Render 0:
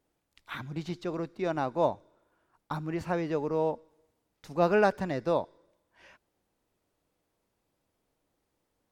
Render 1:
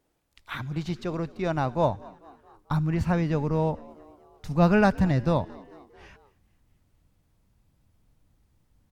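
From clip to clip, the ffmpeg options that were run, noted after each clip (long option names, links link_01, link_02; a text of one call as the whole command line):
ffmpeg -i in.wav -filter_complex "[0:a]asubboost=boost=9:cutoff=140,asplit=5[link_01][link_02][link_03][link_04][link_05];[link_02]adelay=222,afreqshift=71,volume=-23dB[link_06];[link_03]adelay=444,afreqshift=142,volume=-27.7dB[link_07];[link_04]adelay=666,afreqshift=213,volume=-32.5dB[link_08];[link_05]adelay=888,afreqshift=284,volume=-37.2dB[link_09];[link_01][link_06][link_07][link_08][link_09]amix=inputs=5:normalize=0,volume=4dB" out.wav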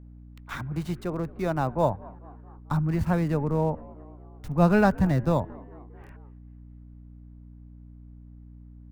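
ffmpeg -i in.wav -filter_complex "[0:a]acrossover=split=170|780|2100[link_01][link_02][link_03][link_04];[link_04]acrusher=bits=5:dc=4:mix=0:aa=0.000001[link_05];[link_01][link_02][link_03][link_05]amix=inputs=4:normalize=0,aeval=exprs='val(0)+0.00562*(sin(2*PI*60*n/s)+sin(2*PI*2*60*n/s)/2+sin(2*PI*3*60*n/s)/3+sin(2*PI*4*60*n/s)/4+sin(2*PI*5*60*n/s)/5)':channel_layout=same" out.wav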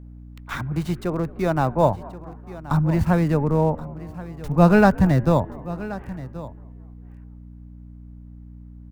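ffmpeg -i in.wav -af "aecho=1:1:1078:0.15,volume=5.5dB" out.wav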